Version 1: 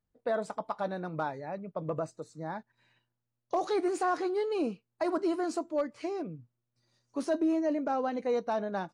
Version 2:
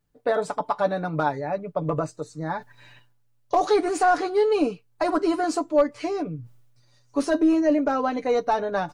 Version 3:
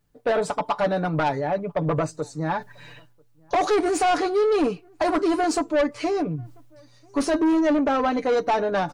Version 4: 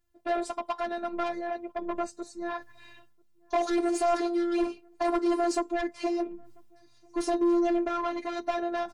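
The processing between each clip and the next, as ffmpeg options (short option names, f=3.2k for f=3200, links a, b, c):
-af "aecho=1:1:6.9:0.58,asubboost=boost=4.5:cutoff=80,areverse,acompressor=mode=upward:threshold=-48dB:ratio=2.5,areverse,volume=8.5dB"
-filter_complex "[0:a]asoftclip=type=tanh:threshold=-21.5dB,asplit=2[a][b];[b]adelay=991.3,volume=-30dB,highshelf=f=4k:g=-22.3[c];[a][c]amix=inputs=2:normalize=0,volume=5dB"
-af "afftfilt=real='hypot(re,im)*cos(PI*b)':imag='0':win_size=512:overlap=0.75,volume=-3.5dB"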